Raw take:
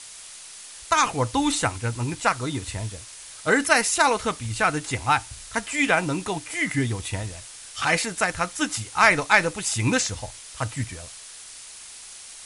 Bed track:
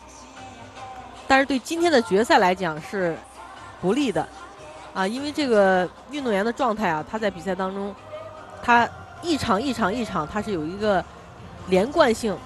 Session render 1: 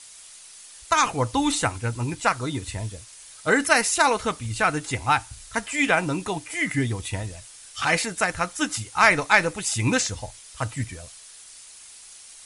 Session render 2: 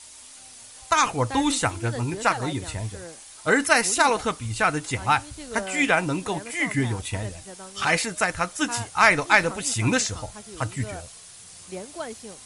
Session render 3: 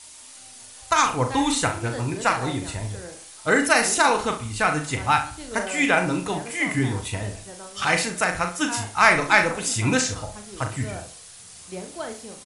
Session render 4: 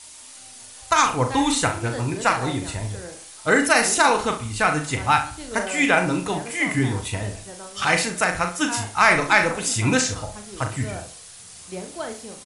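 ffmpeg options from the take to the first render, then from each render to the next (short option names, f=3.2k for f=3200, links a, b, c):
-af "afftdn=nr=6:nf=-43"
-filter_complex "[1:a]volume=-17dB[a];[0:a][a]amix=inputs=2:normalize=0"
-filter_complex "[0:a]asplit=2[a][b];[b]adelay=39,volume=-7dB[c];[a][c]amix=inputs=2:normalize=0,asplit=2[d][e];[e]adelay=67,lowpass=f=3.2k:p=1,volume=-11dB,asplit=2[f][g];[g]adelay=67,lowpass=f=3.2k:p=1,volume=0.37,asplit=2[h][i];[i]adelay=67,lowpass=f=3.2k:p=1,volume=0.37,asplit=2[j][k];[k]adelay=67,lowpass=f=3.2k:p=1,volume=0.37[l];[f][h][j][l]amix=inputs=4:normalize=0[m];[d][m]amix=inputs=2:normalize=0"
-af "volume=1.5dB,alimiter=limit=-3dB:level=0:latency=1"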